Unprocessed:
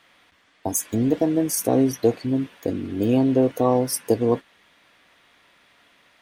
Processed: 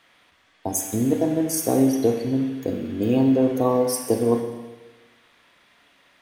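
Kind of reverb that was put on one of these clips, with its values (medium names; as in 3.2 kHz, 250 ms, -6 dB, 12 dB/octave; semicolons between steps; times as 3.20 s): Schroeder reverb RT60 1.2 s, combs from 30 ms, DRR 5 dB; trim -1.5 dB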